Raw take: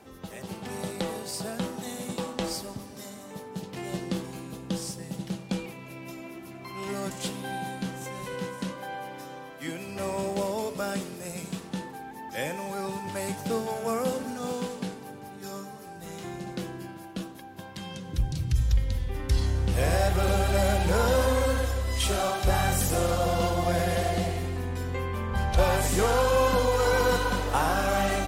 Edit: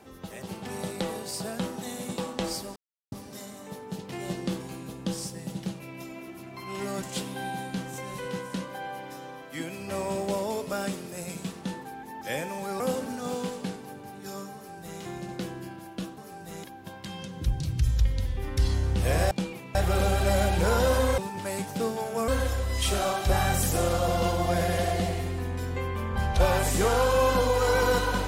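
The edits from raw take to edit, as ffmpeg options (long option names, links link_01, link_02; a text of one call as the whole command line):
ffmpeg -i in.wav -filter_complex "[0:a]asplit=10[link_01][link_02][link_03][link_04][link_05][link_06][link_07][link_08][link_09][link_10];[link_01]atrim=end=2.76,asetpts=PTS-STARTPTS,afade=type=out:start_time=2.756:duration=0.004:curve=hsin,apad=pad_dur=0.36[link_11];[link_02]atrim=start=2.76:end=5.442,asetpts=PTS-STARTPTS,afade=type=in:duration=0.004:curve=hsin[link_12];[link_03]atrim=start=5.878:end=12.882[link_13];[link_04]atrim=start=13.978:end=17.362[link_14];[link_05]atrim=start=15.728:end=16.192[link_15];[link_06]atrim=start=17.358:end=20.032[link_16];[link_07]atrim=start=5.438:end=5.882[link_17];[link_08]atrim=start=20.028:end=21.462[link_18];[link_09]atrim=start=12.878:end=13.982[link_19];[link_10]atrim=start=21.458[link_20];[link_11][link_12]concat=n=2:v=0:a=1[link_21];[link_21][link_13]acrossfade=duration=0.004:curve1=hsin:curve2=hsin[link_22];[link_22][link_14]acrossfade=duration=0.004:curve1=hsin:curve2=hsin[link_23];[link_23][link_15]acrossfade=duration=0.004:curve1=hsin:curve2=hsin[link_24];[link_24][link_16]acrossfade=duration=0.004:curve1=hsin:curve2=hsin[link_25];[link_25][link_17]acrossfade=duration=0.004:curve1=hsin:curve2=hsin[link_26];[link_26][link_18]acrossfade=duration=0.004:curve1=hsin:curve2=hsin[link_27];[link_27][link_19]acrossfade=duration=0.004:curve1=hsin:curve2=hsin[link_28];[link_28][link_20]acrossfade=duration=0.004:curve1=hsin:curve2=hsin" out.wav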